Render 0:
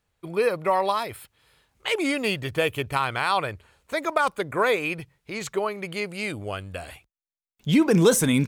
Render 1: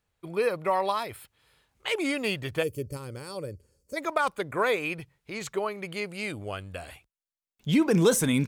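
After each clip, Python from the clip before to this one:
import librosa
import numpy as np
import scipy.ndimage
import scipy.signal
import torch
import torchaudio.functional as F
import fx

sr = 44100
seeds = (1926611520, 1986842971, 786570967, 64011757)

y = fx.spec_box(x, sr, start_s=2.63, length_s=1.34, low_hz=590.0, high_hz=4400.0, gain_db=-19)
y = F.gain(torch.from_numpy(y), -3.5).numpy()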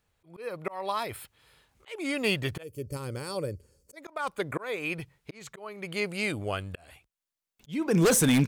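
y = fx.auto_swell(x, sr, attack_ms=493.0)
y = 10.0 ** (-19.0 / 20.0) * (np.abs((y / 10.0 ** (-19.0 / 20.0) + 3.0) % 4.0 - 2.0) - 1.0)
y = F.gain(torch.from_numpy(y), 3.5).numpy()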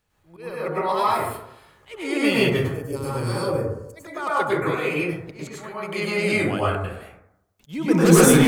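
y = fx.rev_plate(x, sr, seeds[0], rt60_s=0.82, hf_ratio=0.3, predelay_ms=90, drr_db=-8.0)
y = F.gain(torch.from_numpy(y), 1.0).numpy()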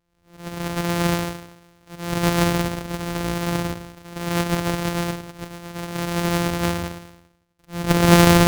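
y = np.r_[np.sort(x[:len(x) // 256 * 256].reshape(-1, 256), axis=1).ravel(), x[len(x) // 256 * 256:]]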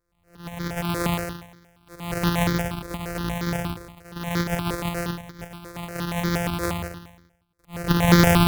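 y = fx.phaser_held(x, sr, hz=8.5, low_hz=790.0, high_hz=2700.0)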